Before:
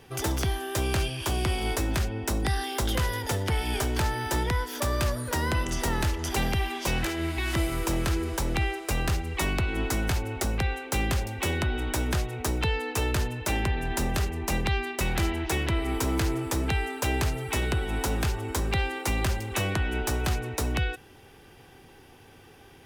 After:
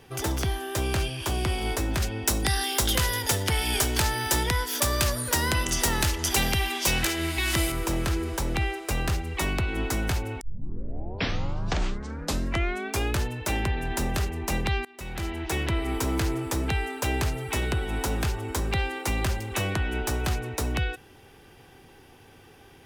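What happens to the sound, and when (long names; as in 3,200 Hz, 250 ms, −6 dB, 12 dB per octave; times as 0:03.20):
0:02.02–0:07.72: high-shelf EQ 2,400 Hz +10 dB
0:10.41: tape start 2.83 s
0:14.85–0:15.61: fade in, from −23 dB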